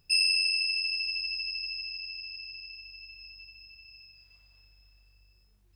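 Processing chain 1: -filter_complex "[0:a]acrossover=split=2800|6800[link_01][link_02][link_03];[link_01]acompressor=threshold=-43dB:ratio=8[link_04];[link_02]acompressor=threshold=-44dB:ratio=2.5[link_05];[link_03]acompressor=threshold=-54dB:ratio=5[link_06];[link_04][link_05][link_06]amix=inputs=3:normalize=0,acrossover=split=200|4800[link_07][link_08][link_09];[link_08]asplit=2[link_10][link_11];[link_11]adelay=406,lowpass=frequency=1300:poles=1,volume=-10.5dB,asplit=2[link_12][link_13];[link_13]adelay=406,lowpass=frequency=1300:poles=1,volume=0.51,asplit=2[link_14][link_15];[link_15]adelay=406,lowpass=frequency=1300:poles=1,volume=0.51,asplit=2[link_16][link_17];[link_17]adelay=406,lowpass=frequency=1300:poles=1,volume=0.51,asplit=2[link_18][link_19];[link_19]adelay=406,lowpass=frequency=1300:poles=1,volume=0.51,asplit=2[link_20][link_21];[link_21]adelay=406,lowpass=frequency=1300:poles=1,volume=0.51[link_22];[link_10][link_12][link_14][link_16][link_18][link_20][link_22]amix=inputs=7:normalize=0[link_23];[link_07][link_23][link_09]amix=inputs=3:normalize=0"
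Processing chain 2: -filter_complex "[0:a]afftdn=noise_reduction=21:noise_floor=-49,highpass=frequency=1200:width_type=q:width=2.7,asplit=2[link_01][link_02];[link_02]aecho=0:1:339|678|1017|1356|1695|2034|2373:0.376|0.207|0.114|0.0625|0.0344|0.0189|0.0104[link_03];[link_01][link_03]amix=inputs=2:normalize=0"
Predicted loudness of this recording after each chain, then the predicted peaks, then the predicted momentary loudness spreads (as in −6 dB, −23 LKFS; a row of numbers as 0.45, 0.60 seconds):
−38.0, −26.5 LKFS; −25.5, −13.5 dBFS; 16, 23 LU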